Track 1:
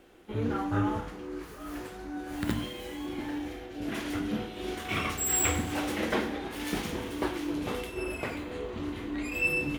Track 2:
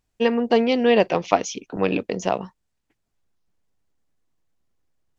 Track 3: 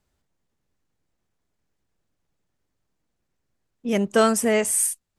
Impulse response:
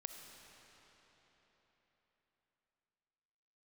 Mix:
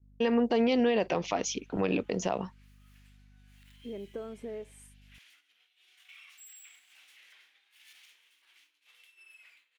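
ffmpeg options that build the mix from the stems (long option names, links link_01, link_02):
-filter_complex "[0:a]alimiter=level_in=1.5dB:limit=-24dB:level=0:latency=1:release=39,volume=-1.5dB,highpass=frequency=2500:width_type=q:width=1.7,adelay=1200,volume=-18.5dB[link_01];[1:a]agate=range=-33dB:threshold=-39dB:ratio=3:detection=peak,aeval=exprs='val(0)+0.002*(sin(2*PI*50*n/s)+sin(2*PI*2*50*n/s)/2+sin(2*PI*3*50*n/s)/3+sin(2*PI*4*50*n/s)/4+sin(2*PI*5*50*n/s)/5)':channel_layout=same,volume=-2.5dB[link_02];[2:a]lowpass=frequency=1200:poles=1,equalizer=frequency=390:width=1.4:gain=11.5,acompressor=threshold=-20dB:ratio=6,volume=-17.5dB[link_03];[link_01][link_02][link_03]amix=inputs=3:normalize=0,agate=range=-33dB:threshold=-57dB:ratio=3:detection=peak,alimiter=limit=-17dB:level=0:latency=1:release=55"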